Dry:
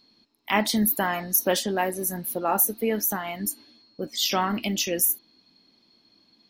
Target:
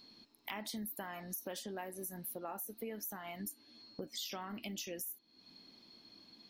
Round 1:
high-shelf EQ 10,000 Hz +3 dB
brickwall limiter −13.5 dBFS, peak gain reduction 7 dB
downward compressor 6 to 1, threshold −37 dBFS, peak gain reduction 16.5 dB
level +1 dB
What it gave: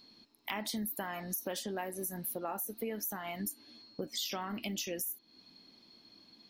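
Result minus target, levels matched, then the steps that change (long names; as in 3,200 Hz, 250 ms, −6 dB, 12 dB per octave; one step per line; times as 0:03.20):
downward compressor: peak gain reduction −5.5 dB
change: downward compressor 6 to 1, threshold −43.5 dBFS, peak gain reduction 21.5 dB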